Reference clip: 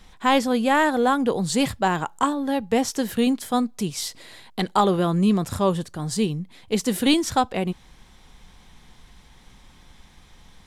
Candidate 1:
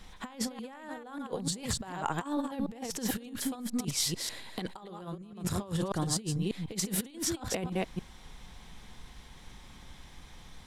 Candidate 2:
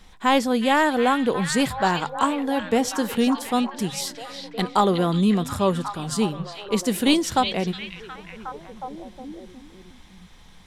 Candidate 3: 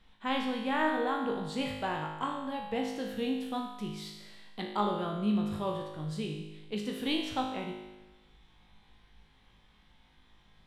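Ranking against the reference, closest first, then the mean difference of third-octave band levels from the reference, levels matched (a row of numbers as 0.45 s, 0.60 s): 2, 3, 1; 4.0 dB, 5.5 dB, 11.5 dB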